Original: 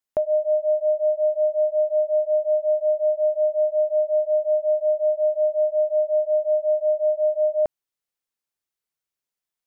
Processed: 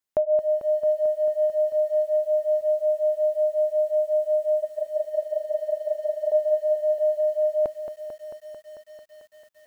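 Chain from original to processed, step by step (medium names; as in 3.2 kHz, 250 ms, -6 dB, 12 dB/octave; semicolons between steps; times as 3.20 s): 4.62–6.32 s: compressor with a negative ratio -27 dBFS, ratio -0.5; bit-crushed delay 222 ms, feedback 80%, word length 9-bit, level -9 dB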